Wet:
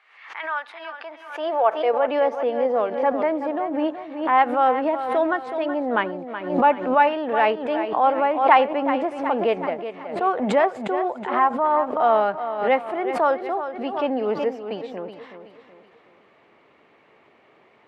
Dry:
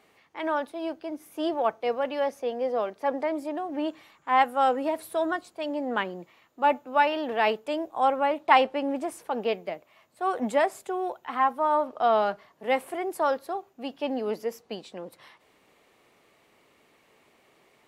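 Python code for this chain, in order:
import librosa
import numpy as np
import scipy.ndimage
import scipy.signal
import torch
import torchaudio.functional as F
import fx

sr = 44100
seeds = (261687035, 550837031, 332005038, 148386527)

p1 = scipy.signal.sosfilt(scipy.signal.butter(2, 2300.0, 'lowpass', fs=sr, output='sos'), x)
p2 = fx.low_shelf(p1, sr, hz=190.0, db=-7.5)
p3 = fx.rider(p2, sr, range_db=3, speed_s=0.5)
p4 = p2 + F.gain(torch.from_numpy(p3), -1.5).numpy()
p5 = fx.filter_sweep_highpass(p4, sr, from_hz=1500.0, to_hz=80.0, start_s=0.76, end_s=3.35, q=1.1)
p6 = fx.echo_feedback(p5, sr, ms=373, feedback_pct=39, wet_db=-10.5)
y = fx.pre_swell(p6, sr, db_per_s=84.0)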